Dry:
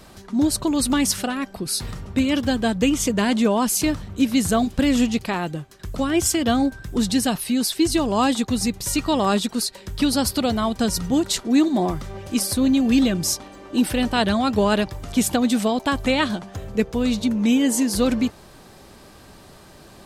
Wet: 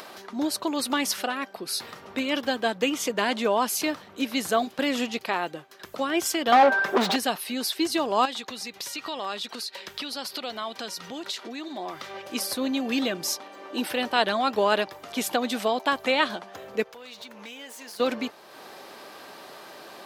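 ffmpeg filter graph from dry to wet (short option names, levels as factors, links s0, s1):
-filter_complex "[0:a]asettb=1/sr,asplit=3[s0][s1][s2];[s0]atrim=end=6.524[s3];[s1]atrim=start=6.52:end=7.16,asetpts=PTS-STARTPTS,afade=t=in:d=0.004:c=qsin,afade=t=out:st=0.636:d=0.004:c=qsin,equalizer=f=650:t=o:w=1.6:g=5.5,aecho=1:1:5.1:0.62,atrim=end_sample=28224,asplit=2[s4][s5];[s5]highpass=f=720:p=1,volume=20,asoftclip=type=tanh:threshold=0.447[s6];[s4][s6]amix=inputs=2:normalize=0,lowpass=f=1600:p=1,volume=0.501[s7];[s2]atrim=start=7.156[s8];[s3][s7]acrossfade=d=0.004:c1=hsin:c2=qsin[s9];[s9][s8]acrossfade=d=0.004:c1=qsin:c2=hsin,asettb=1/sr,asplit=3[s10][s11][s12];[s10]atrim=end=8.254[s13];[s11]atrim=start=8.25:end=12.22,asetpts=PTS-STARTPTS,afade=t=in:d=0.004:c=qsin,afade=t=out:st=3.966:d=0.004:c=qsin,equalizer=f=3300:t=o:w=2.5:g=7.5,acompressor=threshold=0.0501:ratio=8:attack=3.2:release=140:knee=1:detection=peak[s14];[s12]atrim=start=12.216[s15];[s13][s14]acrossfade=d=0.004:c1=hsin:c2=qsin[s16];[s16][s15]acrossfade=d=0.004:c1=qsin:c2=hsin,asettb=1/sr,asplit=3[s17][s18][s19];[s17]atrim=end=16.834[s20];[s18]atrim=start=16.83:end=18,asetpts=PTS-STARTPTS,afade=t=in:d=0.004:c=qsin,afade=t=out:st=1.166:d=0.004:c=qsin,equalizer=f=240:w=0.71:g=-13,acompressor=threshold=0.0158:ratio=5:attack=3.2:release=140:knee=1:detection=peak,aeval=exprs='clip(val(0),-1,0.015)':c=same[s21];[s19]atrim=start=17.996[s22];[s20][s21]acrossfade=d=0.004:c1=hsin:c2=qsin[s23];[s23][s22]acrossfade=d=0.004:c1=qsin:c2=hsin,highpass=460,equalizer=f=8300:t=o:w=1:g=-9.5,acompressor=mode=upward:threshold=0.0158:ratio=2.5"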